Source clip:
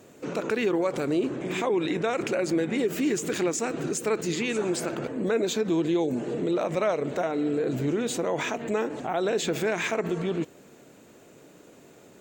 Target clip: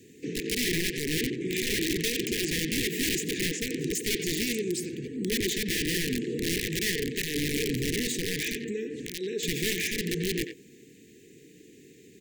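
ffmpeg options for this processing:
-filter_complex "[0:a]asettb=1/sr,asplit=3[s0][s1][s2];[s0]atrim=end=3.234[s3];[s1]atrim=start=3.23:end=3.7,asetpts=PTS-STARTPTS,afade=t=in:d=0.004:c=qsin,afade=t=out:st=0.466:d=0.004:c=qsin,lowpass=f=3400:p=1[s4];[s2]atrim=start=3.696[s5];[s3][s4]acrossfade=d=0.004:c1=hsin:c2=qsin[s6];[s6][s5]acrossfade=d=0.004:c1=qsin:c2=hsin,asettb=1/sr,asplit=3[s7][s8][s9];[s7]atrim=end=4.554[s10];[s8]atrim=start=4.55:end=5.32,asetpts=PTS-STARTPTS,afade=t=in:d=0.004:c=qsin,afade=t=out:st=0.766:d=0.004:c=qsin,equalizer=f=1100:w=0.33:g=-6.5[s11];[s9]atrim=start=5.316[s12];[s10][s11]acrossfade=d=0.004:c1=hsin:c2=qsin[s13];[s13][s12]acrossfade=d=0.004:c1=qsin:c2=hsin,asettb=1/sr,asplit=3[s14][s15][s16];[s14]atrim=end=8.594[s17];[s15]atrim=start=8.59:end=9.43,asetpts=PTS-STARTPTS,afade=t=in:d=0.004:c=qsin,afade=t=out:st=0.836:d=0.004:c=qsin,acompressor=threshold=0.0282:ratio=2.5[s18];[s16]atrim=start=9.426[s19];[s17][s18]acrossfade=d=0.004:c1=hsin:c2=qsin[s20];[s20][s19]acrossfade=d=0.004:c1=qsin:c2=hsin,aeval=exprs='(mod(11.9*val(0)+1,2)-1)/11.9':c=same,asuperstop=centerf=900:order=20:qfactor=0.71,asplit=2[s21][s22];[s22]adelay=90,highpass=300,lowpass=3400,asoftclip=type=hard:threshold=0.0794,volume=0.447[s23];[s21][s23]amix=inputs=2:normalize=0"

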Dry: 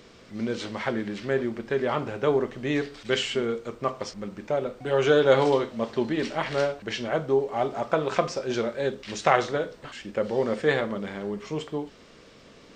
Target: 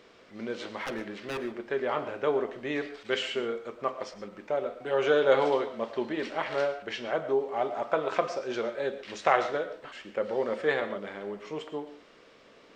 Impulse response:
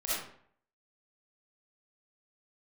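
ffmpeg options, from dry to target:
-filter_complex "[0:a]bass=f=250:g=-12,treble=f=4000:g=-8,asettb=1/sr,asplit=3[s0][s1][s2];[s0]atrim=end=0.774[s3];[s1]atrim=start=0.77:end=1.43,asetpts=PTS-STARTPTS,afade=t=in:d=0.004:c=qsin,afade=t=out:st=0.656:d=0.004:c=qsin,aeval=exprs='0.0531*(abs(mod(val(0)/0.0531+3,4)-2)-1)':c=same[s4];[s2]atrim=start=1.426[s5];[s3][s4]acrossfade=d=0.004:c1=hsin:c2=qsin[s6];[s6][s5]acrossfade=d=0.004:c1=qsin:c2=hsin,asplit=2[s7][s8];[1:a]atrim=start_sample=2205,afade=t=out:st=0.16:d=0.01,atrim=end_sample=7497,adelay=49[s9];[s8][s9]afir=irnorm=-1:irlink=0,volume=0.141[s10];[s7][s10]amix=inputs=2:normalize=0,volume=0.75"

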